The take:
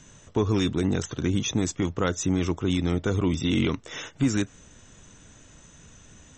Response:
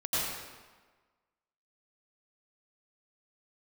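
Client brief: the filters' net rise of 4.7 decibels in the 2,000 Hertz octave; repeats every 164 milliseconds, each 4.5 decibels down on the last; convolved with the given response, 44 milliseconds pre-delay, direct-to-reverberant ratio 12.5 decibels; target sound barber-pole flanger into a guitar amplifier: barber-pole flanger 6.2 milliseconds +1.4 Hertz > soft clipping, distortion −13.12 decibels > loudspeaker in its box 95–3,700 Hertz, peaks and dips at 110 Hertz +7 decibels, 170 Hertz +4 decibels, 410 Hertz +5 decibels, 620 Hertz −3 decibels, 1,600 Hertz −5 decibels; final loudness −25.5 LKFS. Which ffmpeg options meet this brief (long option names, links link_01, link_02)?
-filter_complex "[0:a]equalizer=frequency=2000:width_type=o:gain=8,aecho=1:1:164|328|492|656|820|984|1148|1312|1476:0.596|0.357|0.214|0.129|0.0772|0.0463|0.0278|0.0167|0.01,asplit=2[link_01][link_02];[1:a]atrim=start_sample=2205,adelay=44[link_03];[link_02][link_03]afir=irnorm=-1:irlink=0,volume=-21dB[link_04];[link_01][link_04]amix=inputs=2:normalize=0,asplit=2[link_05][link_06];[link_06]adelay=6.2,afreqshift=1.4[link_07];[link_05][link_07]amix=inputs=2:normalize=1,asoftclip=threshold=-22dB,highpass=95,equalizer=frequency=110:width_type=q:width=4:gain=7,equalizer=frequency=170:width_type=q:width=4:gain=4,equalizer=frequency=410:width_type=q:width=4:gain=5,equalizer=frequency=620:width_type=q:width=4:gain=-3,equalizer=frequency=1600:width_type=q:width=4:gain=-5,lowpass=frequency=3700:width=0.5412,lowpass=frequency=3700:width=1.3066,volume=2.5dB"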